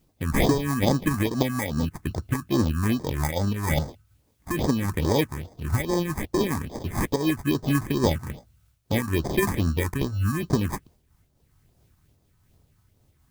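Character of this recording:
aliases and images of a low sample rate 1,400 Hz, jitter 0%
phaser sweep stages 4, 2.4 Hz, lowest notch 490–2,700 Hz
a quantiser's noise floor 12 bits, dither triangular
amplitude modulation by smooth noise

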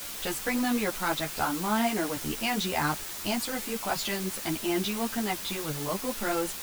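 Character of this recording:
a quantiser's noise floor 6 bits, dither triangular
a shimmering, thickened sound

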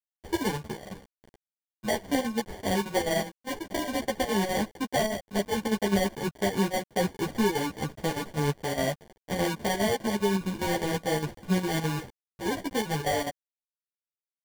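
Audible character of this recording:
a quantiser's noise floor 8 bits, dither none
chopped level 4.9 Hz, depth 65%, duty 75%
aliases and images of a low sample rate 1,300 Hz, jitter 0%
a shimmering, thickened sound

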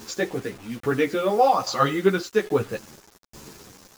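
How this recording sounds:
tremolo saw down 1.2 Hz, depth 70%
a quantiser's noise floor 8 bits, dither none
a shimmering, thickened sound

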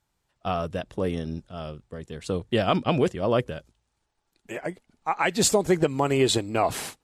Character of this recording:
background noise floor −77 dBFS
spectral slope −4.5 dB per octave

